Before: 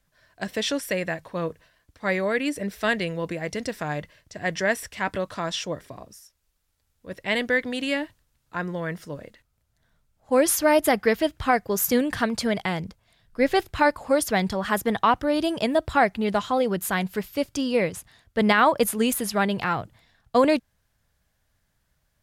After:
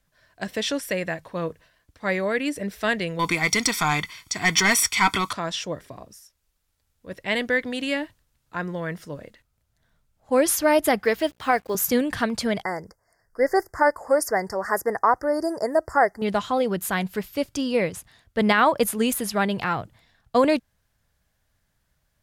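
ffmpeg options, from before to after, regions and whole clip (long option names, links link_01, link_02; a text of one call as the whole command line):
ffmpeg -i in.wav -filter_complex "[0:a]asettb=1/sr,asplit=3[link_01][link_02][link_03];[link_01]atrim=end=3.194[link_04];[link_02]atrim=start=3.19:end=5.33,asetpts=PTS-STARTPTS,afade=type=in:duration=0.004:curve=qsin,afade=type=out:start_time=2.136:duration=0.004:curve=qsin,highshelf=frequency=2900:gain=10,asplit=2[link_05][link_06];[link_06]highpass=frequency=720:poles=1,volume=15dB,asoftclip=type=tanh:threshold=-9dB[link_07];[link_05][link_07]amix=inputs=2:normalize=0,lowpass=frequency=5800:poles=1,volume=-6dB,aecho=1:1:0.9:0.98,atrim=end_sample=94374[link_08];[link_03]atrim=start=5.326[link_09];[link_04][link_08]acrossfade=duration=0.004:curve1=hsin:curve2=qsin[link_10];[link_10][link_09]acrossfade=duration=0.004:curve1=qsin:curve2=hsin,asettb=1/sr,asplit=3[link_11][link_12][link_13];[link_11]atrim=end=11.054[link_14];[link_12]atrim=start=11.05:end=11.75,asetpts=PTS-STARTPTS,afade=type=in:duration=0.004:curve=qsin,afade=type=out:start_time=0.696:duration=0.004:curve=qsin,highpass=270,aeval=exprs='val(0)+0.00178*(sin(2*PI*60*n/s)+sin(2*PI*2*60*n/s)/2+sin(2*PI*3*60*n/s)/3+sin(2*PI*4*60*n/s)/4+sin(2*PI*5*60*n/s)/5)':channel_layout=same,acrusher=bits=7:mix=0:aa=0.5[link_15];[link_13]atrim=start=11.746[link_16];[link_14][link_15]acrossfade=duration=0.004:curve1=hsin:curve2=qsin[link_17];[link_17][link_16]acrossfade=duration=0.004:curve1=qsin:curve2=hsin,asettb=1/sr,asplit=3[link_18][link_19][link_20];[link_18]atrim=end=12.634[link_21];[link_19]atrim=start=12.63:end=16.22,asetpts=PTS-STARTPTS,afade=type=in:duration=0.004:curve=qsin,afade=type=out:start_time=3.586:duration=0.004:curve=qsin,asuperstop=centerf=3100:order=20:qfactor=1.2,lowshelf=frequency=300:width_type=q:width=1.5:gain=-8.5[link_22];[link_20]atrim=start=16.216[link_23];[link_21][link_22]acrossfade=duration=0.004:curve1=hsin:curve2=qsin[link_24];[link_24][link_23]acrossfade=duration=0.004:curve1=qsin:curve2=hsin" out.wav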